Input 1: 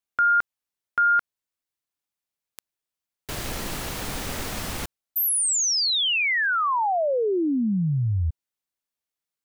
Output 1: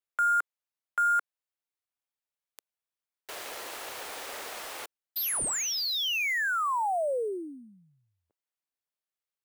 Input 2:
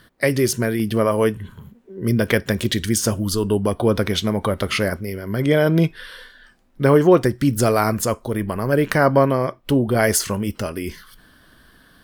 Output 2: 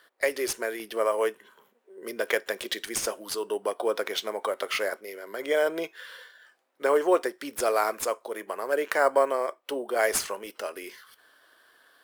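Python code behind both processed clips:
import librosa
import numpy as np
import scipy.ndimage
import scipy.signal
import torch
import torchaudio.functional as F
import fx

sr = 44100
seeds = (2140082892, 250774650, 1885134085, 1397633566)

p1 = scipy.signal.sosfilt(scipy.signal.butter(4, 430.0, 'highpass', fs=sr, output='sos'), x)
p2 = fx.sample_hold(p1, sr, seeds[0], rate_hz=8900.0, jitter_pct=0)
p3 = p1 + (p2 * librosa.db_to_amplitude(-9.5))
y = p3 * librosa.db_to_amplitude(-7.5)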